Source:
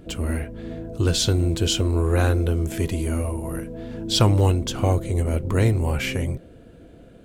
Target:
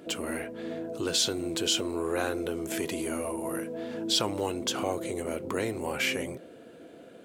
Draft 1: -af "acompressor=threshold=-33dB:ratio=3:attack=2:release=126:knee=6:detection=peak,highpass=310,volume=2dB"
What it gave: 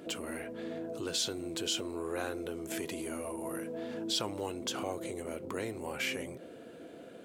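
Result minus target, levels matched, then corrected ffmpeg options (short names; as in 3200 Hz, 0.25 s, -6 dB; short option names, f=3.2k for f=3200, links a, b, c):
compressor: peak gain reduction +6.5 dB
-af "acompressor=threshold=-23dB:ratio=3:attack=2:release=126:knee=6:detection=peak,highpass=310,volume=2dB"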